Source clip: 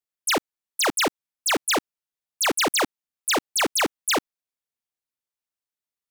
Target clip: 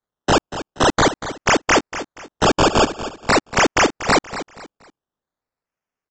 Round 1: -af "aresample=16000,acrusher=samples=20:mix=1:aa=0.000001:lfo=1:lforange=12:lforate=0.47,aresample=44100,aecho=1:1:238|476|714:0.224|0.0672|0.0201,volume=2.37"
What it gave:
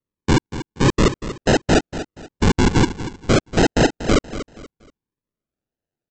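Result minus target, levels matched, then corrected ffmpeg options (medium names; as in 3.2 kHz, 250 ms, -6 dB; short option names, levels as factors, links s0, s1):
decimation with a swept rate: distortion +19 dB
-af "aresample=16000,acrusher=samples=6:mix=1:aa=0.000001:lfo=1:lforange=3.6:lforate=0.47,aresample=44100,aecho=1:1:238|476|714:0.224|0.0672|0.0201,volume=2.37"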